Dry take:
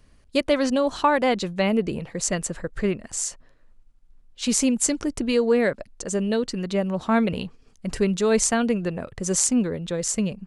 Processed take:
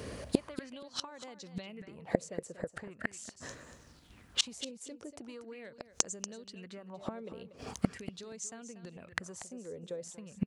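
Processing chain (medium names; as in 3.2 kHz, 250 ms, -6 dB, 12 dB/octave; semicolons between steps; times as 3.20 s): high-pass 71 Hz 24 dB/octave; compression 12:1, threshold -29 dBFS, peak gain reduction 15.5 dB; inverted gate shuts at -30 dBFS, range -32 dB; on a send: feedback delay 237 ms, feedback 15%, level -12 dB; on the sum: sweeping bell 0.41 Hz 450–6900 Hz +12 dB; trim +16 dB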